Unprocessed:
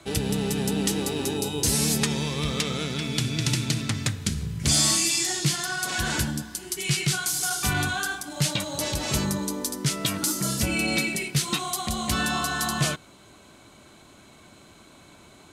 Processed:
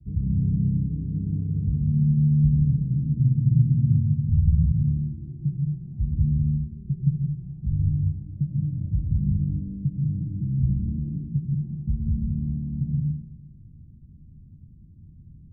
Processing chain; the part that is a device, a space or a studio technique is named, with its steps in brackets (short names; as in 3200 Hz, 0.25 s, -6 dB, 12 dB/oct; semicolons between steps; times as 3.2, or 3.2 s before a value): 2.7–3.85 steep low-pass 800 Hz 48 dB/oct; low shelf 110 Hz +11 dB; club heard from the street (limiter -16.5 dBFS, peak gain reduction 9 dB; LPF 170 Hz 24 dB/oct; reverb RT60 0.85 s, pre-delay 98 ms, DRR -1 dB); gain +3.5 dB